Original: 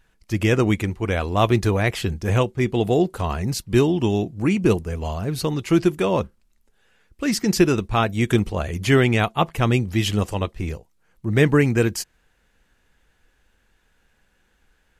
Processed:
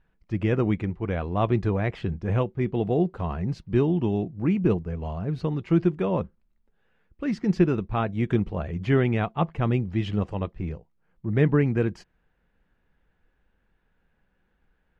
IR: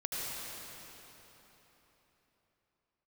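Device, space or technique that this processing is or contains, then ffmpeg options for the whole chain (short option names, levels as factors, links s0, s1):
phone in a pocket: -af "lowpass=3700,equalizer=f=170:t=o:w=0.4:g=6,highshelf=f=2400:g=-11.5,volume=0.562"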